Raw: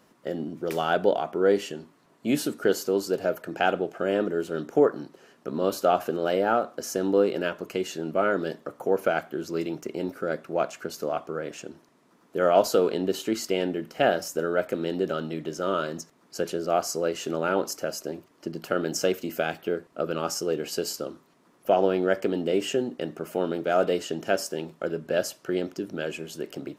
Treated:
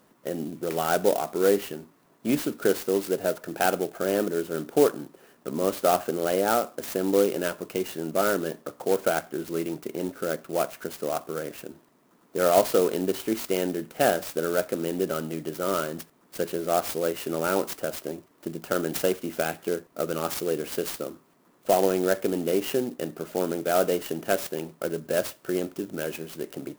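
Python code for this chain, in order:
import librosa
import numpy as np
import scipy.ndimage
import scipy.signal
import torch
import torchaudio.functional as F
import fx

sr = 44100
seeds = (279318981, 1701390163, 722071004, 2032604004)

y = fx.clock_jitter(x, sr, seeds[0], jitter_ms=0.053)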